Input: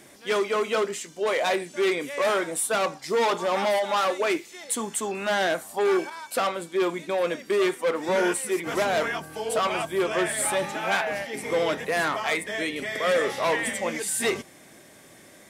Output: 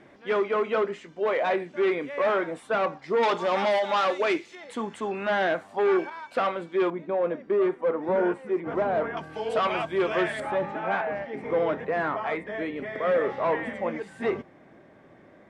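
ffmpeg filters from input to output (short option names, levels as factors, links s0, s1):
-af "asetnsamples=n=441:p=0,asendcmd='3.23 lowpass f 4200;4.55 lowpass f 2400;6.9 lowpass f 1100;9.17 lowpass f 3100;10.4 lowpass f 1400',lowpass=2000"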